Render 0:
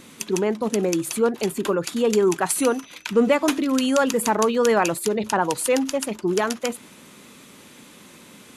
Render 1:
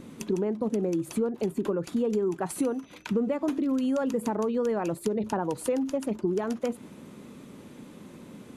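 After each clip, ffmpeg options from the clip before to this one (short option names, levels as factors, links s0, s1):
-af "tiltshelf=f=970:g=8.5,acompressor=threshold=0.0891:ratio=6,volume=0.668"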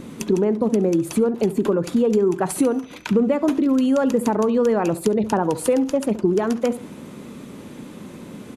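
-filter_complex "[0:a]asplit=2[s0][s1];[s1]adelay=69,lowpass=f=3300:p=1,volume=0.168,asplit=2[s2][s3];[s3]adelay=69,lowpass=f=3300:p=1,volume=0.35,asplit=2[s4][s5];[s5]adelay=69,lowpass=f=3300:p=1,volume=0.35[s6];[s0][s2][s4][s6]amix=inputs=4:normalize=0,volume=2.66"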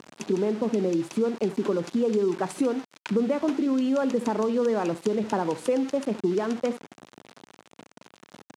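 -af "aeval=exprs='val(0)*gte(abs(val(0)),0.0299)':c=same,highpass=160,lowpass=6900,volume=0.531"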